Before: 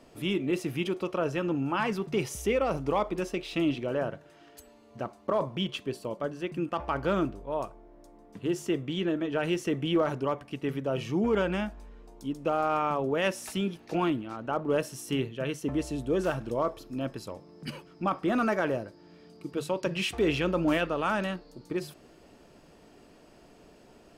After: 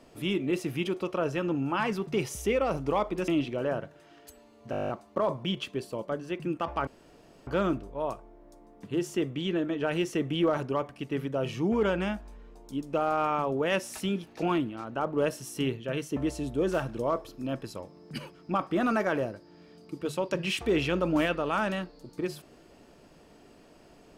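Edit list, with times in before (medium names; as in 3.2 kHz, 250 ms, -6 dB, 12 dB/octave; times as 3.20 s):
3.28–3.58 s: delete
5.01 s: stutter 0.02 s, 10 plays
6.99 s: insert room tone 0.60 s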